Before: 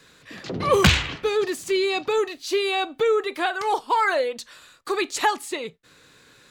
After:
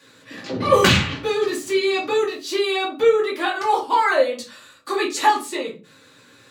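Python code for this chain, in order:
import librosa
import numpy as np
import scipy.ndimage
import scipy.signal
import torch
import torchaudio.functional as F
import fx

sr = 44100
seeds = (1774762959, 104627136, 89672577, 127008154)

y = scipy.signal.sosfilt(scipy.signal.butter(2, 130.0, 'highpass', fs=sr, output='sos'), x)
y = fx.room_shoebox(y, sr, seeds[0], volume_m3=150.0, walls='furnished', distance_m=2.4)
y = y * 10.0 ** (-2.5 / 20.0)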